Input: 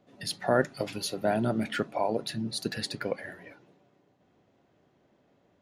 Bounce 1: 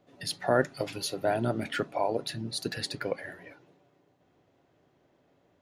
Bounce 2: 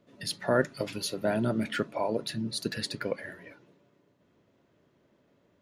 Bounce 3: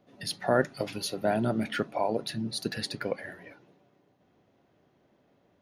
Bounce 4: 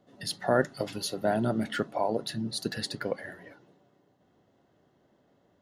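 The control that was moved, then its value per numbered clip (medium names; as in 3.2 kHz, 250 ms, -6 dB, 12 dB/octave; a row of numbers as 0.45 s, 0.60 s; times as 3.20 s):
band-stop, frequency: 210 Hz, 760 Hz, 7.6 kHz, 2.4 kHz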